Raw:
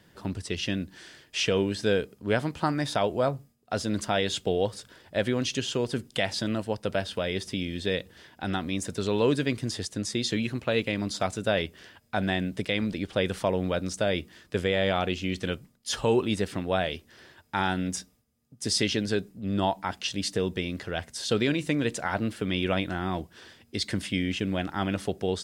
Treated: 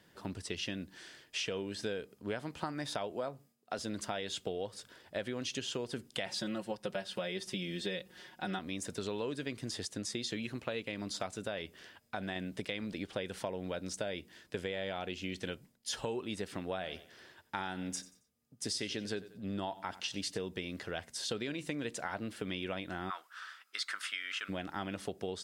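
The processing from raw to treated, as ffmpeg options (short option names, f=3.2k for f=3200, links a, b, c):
-filter_complex "[0:a]asettb=1/sr,asplit=3[a][b][c];[a]atrim=end=3.124[d];[b]atrim=start=3.12:end=3.79,asetpts=PTS-STARTPTS,afade=t=in:d=0.004:c=qsin,afade=t=out:st=0.666:d=0.004:c=qsin,highpass=150[e];[c]atrim=start=3.786[f];[d][e]acrossfade=d=0.004:c1=hsin:c2=qsin[g];[g][f]acrossfade=d=0.004:c1=qsin:c2=hsin,asettb=1/sr,asplit=3[h][i][j];[h]atrim=end=6.264[k];[i]atrim=start=6.26:end=8.59,asetpts=PTS-STARTPTS,afade=t=in:d=0.004:c=qsin,afade=t=out:st=2.326:d=0.004:c=qsin,aecho=1:1:5.5:0.91,atrim=end_sample=102753[l];[j]atrim=start=8.586[m];[k][l]acrossfade=d=0.004:c1=hsin:c2=qsin[n];[n][m]acrossfade=d=0.004:c1=qsin:c2=hsin,asettb=1/sr,asplit=3[o][p][q];[o]atrim=end=11.454[r];[p]atrim=start=11.45:end=12.36,asetpts=PTS-STARTPTS,afade=t=in:d=0.004:c=qsin,afade=t=out:st=0.906:d=0.004:c=qsin,acompressor=threshold=-31dB:ratio=1.5:attack=3.2:release=140:knee=1:detection=peak[s];[q]atrim=start=12.356[t];[r][s]acrossfade=d=0.004:c1=hsin:c2=qsin[u];[u][t]acrossfade=d=0.004:c1=qsin:c2=hsin,asettb=1/sr,asplit=3[v][w][x];[v]atrim=end=13.164[y];[w]atrim=start=13.16:end=16.16,asetpts=PTS-STARTPTS,afade=t=in:d=0.004:c=qsin,afade=t=out:st=2.996:d=0.004:c=qsin,bandreject=f=1.2k:w=9.9[z];[x]atrim=start=16.156[aa];[y][z]acrossfade=d=0.004:c1=hsin:c2=qsin[ab];[ab][aa]acrossfade=d=0.004:c1=qsin:c2=hsin,asettb=1/sr,asplit=3[ac][ad][ae];[ac]atrim=end=16.684[af];[ad]atrim=start=16.68:end=20.39,asetpts=PTS-STARTPTS,afade=t=in:d=0.004:c=qsin,afade=t=out:st=3.706:d=0.004:c=qsin,aecho=1:1:91|182|273:0.112|0.037|0.0122,atrim=end_sample=163611[ag];[ae]atrim=start=20.386[ah];[af][ag]acrossfade=d=0.004:c1=hsin:c2=qsin[ai];[ai][ah]acrossfade=d=0.004:c1=qsin:c2=hsin,asplit=3[aj][ak][al];[aj]afade=t=out:st=23.09:d=0.02[am];[ak]highpass=f=1.3k:t=q:w=8.5,afade=t=in:st=23.09:d=0.02,afade=t=out:st=24.48:d=0.02[an];[al]afade=t=in:st=24.48:d=0.02[ao];[am][an][ao]amix=inputs=3:normalize=0,lowshelf=f=160:g=-8,acompressor=threshold=-30dB:ratio=6,volume=-4dB"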